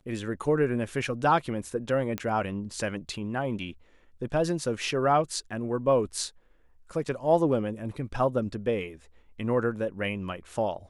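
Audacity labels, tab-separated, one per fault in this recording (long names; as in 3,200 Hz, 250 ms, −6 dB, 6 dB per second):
2.180000	2.180000	click −16 dBFS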